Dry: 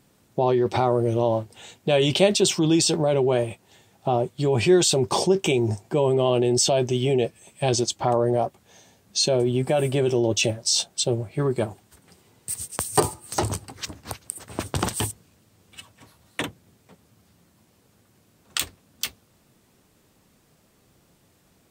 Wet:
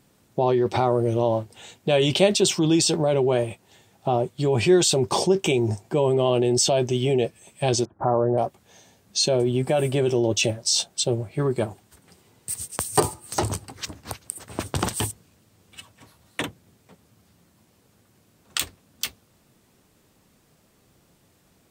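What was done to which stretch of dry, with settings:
0:07.85–0:08.38: Butterworth low-pass 1,600 Hz 48 dB per octave

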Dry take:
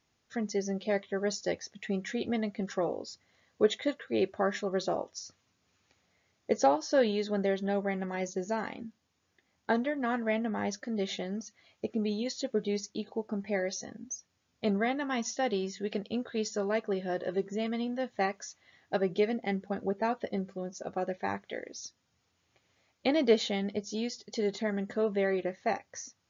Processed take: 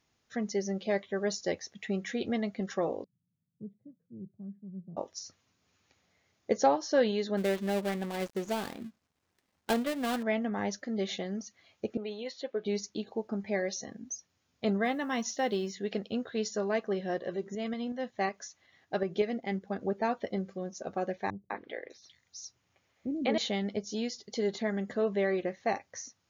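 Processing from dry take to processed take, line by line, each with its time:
0:03.04–0:04.97: flat-topped band-pass 150 Hz, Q 2.1
0:07.37–0:10.23: gap after every zero crossing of 0.21 ms
0:11.97–0:12.66: three-way crossover with the lows and the highs turned down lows −15 dB, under 370 Hz, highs −19 dB, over 4,000 Hz
0:14.85–0:15.75: log-companded quantiser 8 bits
0:17.18–0:19.81: shaped tremolo saw up 5.4 Hz, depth 45%
0:21.30–0:23.38: three-band delay without the direct sound lows, mids, highs 200/600 ms, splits 330/3,900 Hz

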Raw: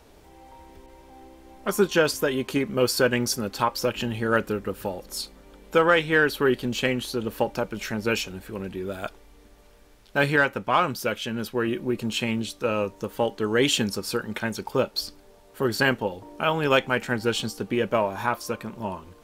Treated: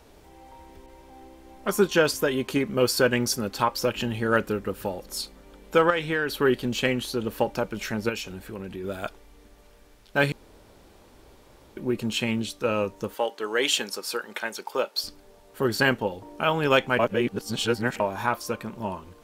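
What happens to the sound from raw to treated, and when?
0:05.90–0:06.41: downward compressor 3 to 1, threshold −23 dBFS
0:08.09–0:08.84: downward compressor 2 to 1, threshold −33 dBFS
0:10.32–0:11.77: fill with room tone
0:13.14–0:15.04: high-pass filter 480 Hz
0:16.99–0:18.00: reverse

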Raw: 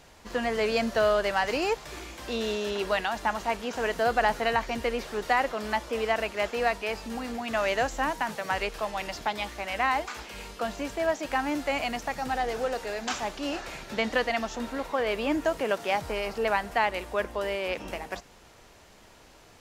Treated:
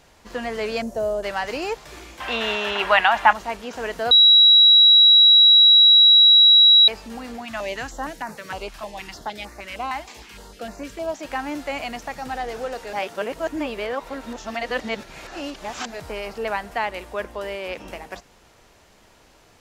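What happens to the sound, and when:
0:00.82–0:01.23: flat-topped bell 2,300 Hz −16 dB 2.4 octaves
0:02.20–0:03.33: flat-topped bell 1,500 Hz +13.5 dB 2.6 octaves
0:04.11–0:06.88: beep over 3,880 Hz −8.5 dBFS
0:07.45–0:11.19: notch on a step sequencer 6.5 Hz 450–3,200 Hz
0:12.93–0:16.00: reverse

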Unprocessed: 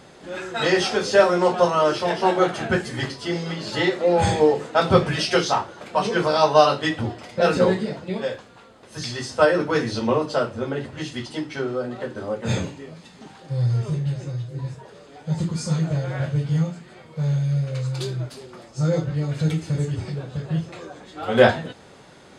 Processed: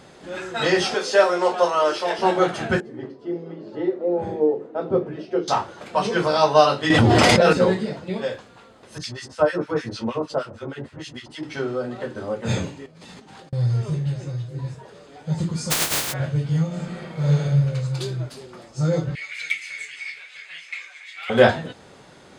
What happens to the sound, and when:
0:00.94–0:02.19: high-pass filter 370 Hz
0:02.80–0:05.48: resonant band-pass 360 Hz, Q 1.8
0:06.90–0:07.53: envelope flattener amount 100%
0:08.98–0:11.43: two-band tremolo in antiphase 6.5 Hz, depth 100%, crossover 1,300 Hz
0:12.86–0:13.53: compressor whose output falls as the input rises −48 dBFS
0:15.70–0:16.12: compressing power law on the bin magnitudes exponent 0.12
0:16.67–0:17.43: thrown reverb, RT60 1.3 s, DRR −6.5 dB
0:19.15–0:21.30: high-pass with resonance 2,200 Hz, resonance Q 10

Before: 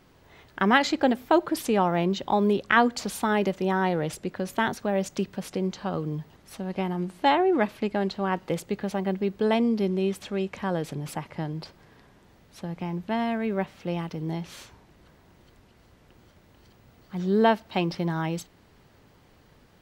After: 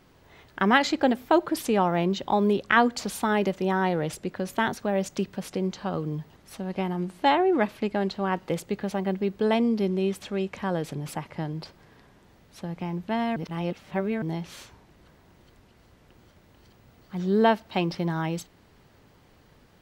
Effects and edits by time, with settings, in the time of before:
0:13.36–0:14.22: reverse

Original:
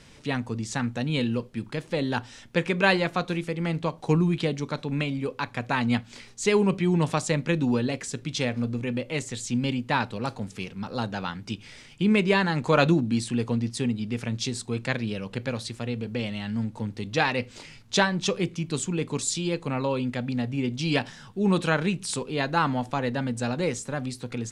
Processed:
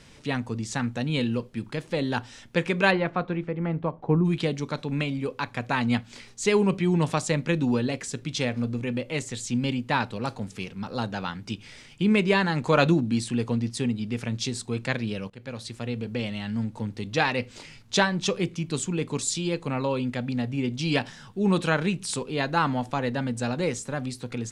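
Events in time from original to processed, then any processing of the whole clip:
0:02.90–0:04.24: low-pass filter 2,300 Hz → 1,100 Hz
0:15.30–0:16.06: fade in equal-power, from −21 dB

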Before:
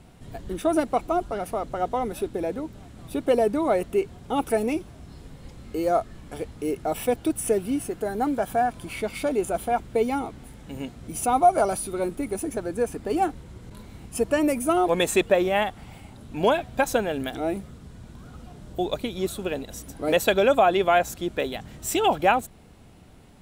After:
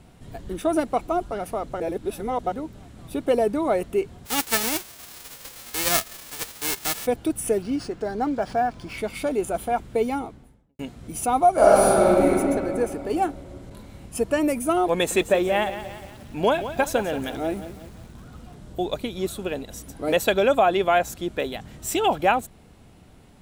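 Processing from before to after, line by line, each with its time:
0:01.80–0:02.52: reverse
0:04.25–0:07.05: spectral envelope flattened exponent 0.1
0:07.62–0:08.98: linearly interpolated sample-rate reduction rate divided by 3×
0:10.06–0:10.79: fade out and dull
0:11.56–0:12.26: thrown reverb, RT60 2.7 s, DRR −9 dB
0:14.93–0:18.55: feedback echo at a low word length 177 ms, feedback 55%, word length 7 bits, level −11.5 dB

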